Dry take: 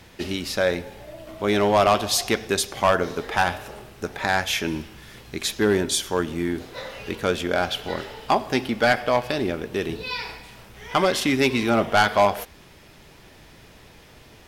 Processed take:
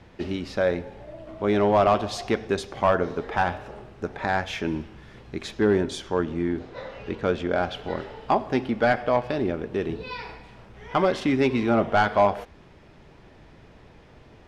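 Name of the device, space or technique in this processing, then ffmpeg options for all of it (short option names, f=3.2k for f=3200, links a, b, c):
through cloth: -filter_complex "[0:a]lowpass=7.4k,highshelf=f=2.4k:g=-14,asettb=1/sr,asplit=3[a][b][c];[a]atrim=end=6.024[d];[b]atrim=start=6.02:end=7.56,asetpts=PTS-STARTPTS,afade=t=in:d=0.004:c=qsin,afade=t=out:st=1.536:d=0.004:c=qsin,lowpass=7.9k[e];[c]atrim=start=7.556[f];[d][e]acrossfade=d=0.004:c1=hsin:c2=qsin[g];[g][f]acrossfade=d=0.004:c1=qsin:c2=hsin"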